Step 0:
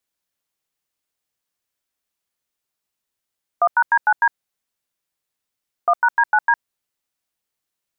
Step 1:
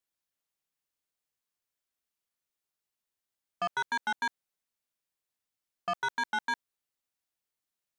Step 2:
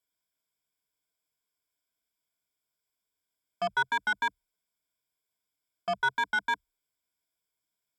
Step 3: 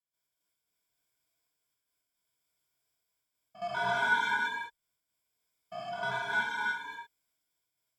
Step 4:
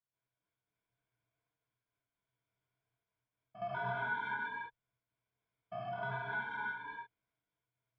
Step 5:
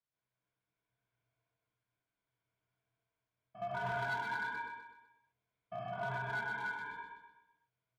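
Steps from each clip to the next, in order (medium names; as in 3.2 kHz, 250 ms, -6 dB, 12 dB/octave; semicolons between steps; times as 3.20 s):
saturation -19 dBFS, distortion -10 dB; trim -7.5 dB
rippled EQ curve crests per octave 1.7, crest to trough 13 dB
spectrogram pixelated in time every 200 ms; trance gate ".x.x.xxxxxx" 112 bpm -12 dB; gated-style reverb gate 370 ms flat, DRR -5.5 dB
peaking EQ 120 Hz +13.5 dB 0.26 oct; compression 2:1, threshold -38 dBFS, peak gain reduction 9 dB; distance through air 480 m; trim +1 dB
low-pass 4 kHz; overload inside the chain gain 34 dB; on a send: feedback delay 126 ms, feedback 43%, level -5 dB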